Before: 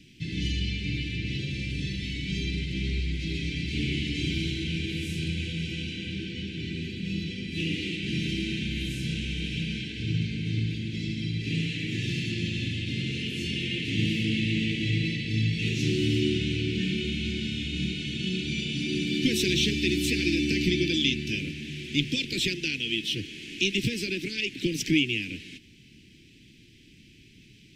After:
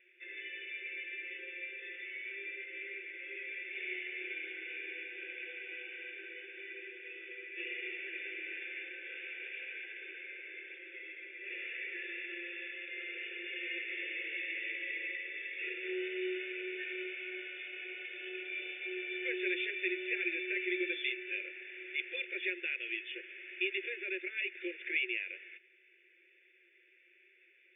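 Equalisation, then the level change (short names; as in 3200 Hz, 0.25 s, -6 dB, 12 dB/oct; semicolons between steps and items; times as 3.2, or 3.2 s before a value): brick-wall FIR band-pass 360–3600 Hz; fixed phaser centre 640 Hz, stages 8; +3.0 dB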